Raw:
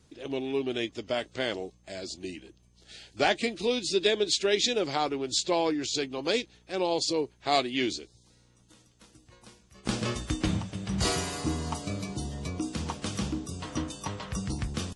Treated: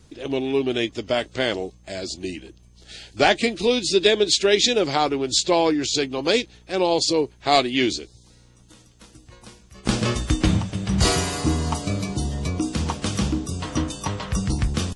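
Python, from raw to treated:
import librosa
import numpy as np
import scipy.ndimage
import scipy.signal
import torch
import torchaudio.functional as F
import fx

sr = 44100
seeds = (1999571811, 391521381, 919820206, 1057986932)

y = fx.low_shelf(x, sr, hz=63.0, db=8.0)
y = y * 10.0 ** (7.5 / 20.0)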